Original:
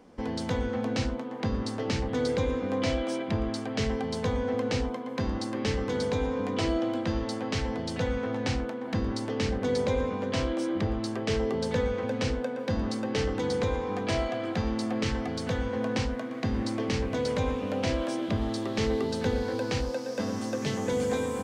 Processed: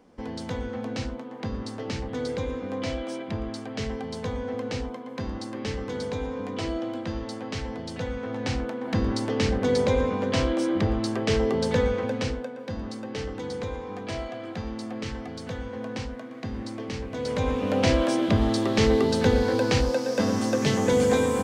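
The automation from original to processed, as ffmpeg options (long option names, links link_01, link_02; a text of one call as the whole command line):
ffmpeg -i in.wav -af "volume=16dB,afade=type=in:start_time=8.19:duration=0.85:silence=0.446684,afade=type=out:start_time=11.87:duration=0.65:silence=0.354813,afade=type=in:start_time=17.12:duration=0.73:silence=0.266073" out.wav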